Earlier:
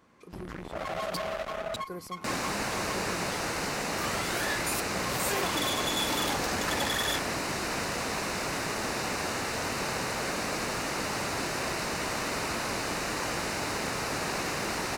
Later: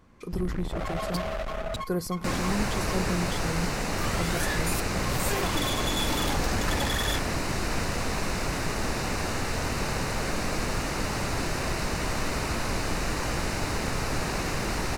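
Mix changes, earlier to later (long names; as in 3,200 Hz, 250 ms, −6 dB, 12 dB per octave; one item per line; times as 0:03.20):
speech +9.0 dB
master: remove high-pass filter 290 Hz 6 dB per octave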